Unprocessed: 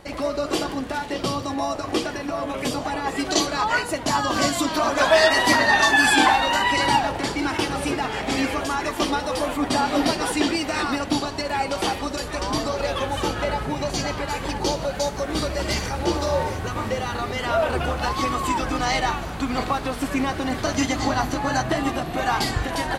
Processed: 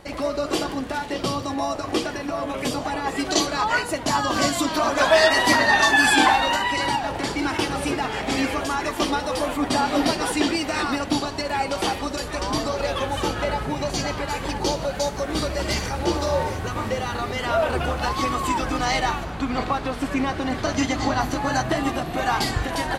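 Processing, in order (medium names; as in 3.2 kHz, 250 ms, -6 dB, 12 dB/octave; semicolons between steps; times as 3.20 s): 6.54–7.30 s: compression 4:1, threshold -20 dBFS, peak gain reduction 6.5 dB; 19.23–21.20 s: treble shelf 6.7 kHz -> 11 kHz -11 dB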